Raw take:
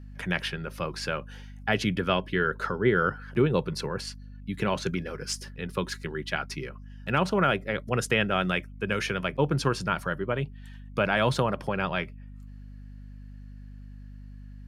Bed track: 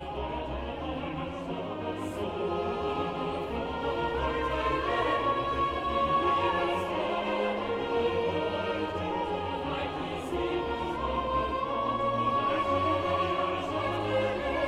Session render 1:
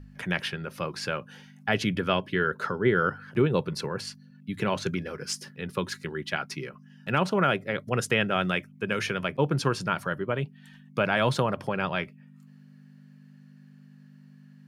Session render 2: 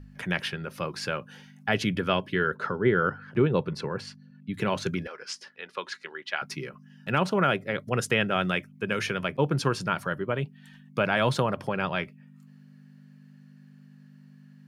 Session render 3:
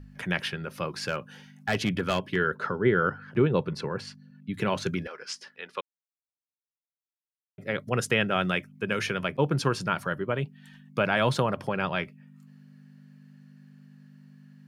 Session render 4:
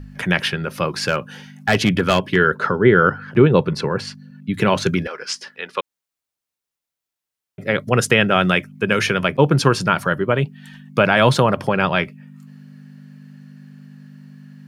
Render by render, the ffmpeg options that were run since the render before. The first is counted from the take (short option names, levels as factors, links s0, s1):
-af "bandreject=f=50:t=h:w=4,bandreject=f=100:t=h:w=4"
-filter_complex "[0:a]asettb=1/sr,asplit=3[s0][s1][s2];[s0]atrim=end=2.564[s3];[s1]atrim=start=2.56:end=4.54,asetpts=PTS-STARTPTS,afade=t=in:d=0.004:c=qsin,afade=t=out:st=1.976:d=0.004:c=qsin,aemphasis=mode=reproduction:type=50fm[s4];[s2]atrim=start=4.536[s5];[s3][s4]acrossfade=d=0.004:c1=hsin:c2=qsin[s6];[s6][s5]acrossfade=d=0.004:c1=qsin:c2=hsin,asettb=1/sr,asplit=3[s7][s8][s9];[s7]atrim=end=5.074[s10];[s8]atrim=start=5.07:end=6.42,asetpts=PTS-STARTPTS,afade=t=in:d=0.004:c=qsin,afade=t=out:st=1.346:d=0.004:c=qsin,highpass=630,lowpass=4900[s11];[s9]atrim=start=6.416[s12];[s10][s11]acrossfade=d=0.004:c1=hsin:c2=qsin[s13];[s13][s12]acrossfade=d=0.004:c1=qsin:c2=hsin"
-filter_complex "[0:a]asplit=3[s0][s1][s2];[s0]afade=t=out:st=1.01:d=0.02[s3];[s1]asoftclip=type=hard:threshold=0.106,afade=t=in:st=1.01:d=0.02,afade=t=out:st=2.35:d=0.02[s4];[s2]afade=t=in:st=2.35:d=0.02[s5];[s3][s4][s5]amix=inputs=3:normalize=0,asplit=3[s6][s7][s8];[s6]atrim=end=5.81,asetpts=PTS-STARTPTS,afade=t=out:st=5.806:d=0.004:c=hsin[s9];[s7]atrim=start=5.81:end=7.58,asetpts=PTS-STARTPTS,volume=0[s10];[s8]atrim=start=7.58,asetpts=PTS-STARTPTS,afade=t=in:d=0.004:c=hsin[s11];[s9][s10][s11]concat=n=3:v=0:a=1"
-af "volume=3.35,alimiter=limit=0.891:level=0:latency=1"